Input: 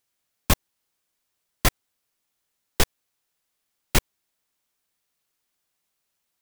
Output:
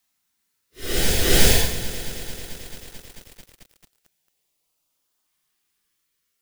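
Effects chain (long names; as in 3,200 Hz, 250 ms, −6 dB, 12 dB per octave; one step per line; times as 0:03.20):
mains-hum notches 60/120/180/240 Hz
in parallel at +2 dB: output level in coarse steps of 21 dB
on the sum: extreme stretch with random phases 5.4×, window 0.10 s, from 0:02.55
auto-filter notch saw up 0.38 Hz 430–2,300 Hz
backwards echo 361 ms −5.5 dB
feedback echo at a low word length 220 ms, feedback 80%, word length 6 bits, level −14 dB
level −1 dB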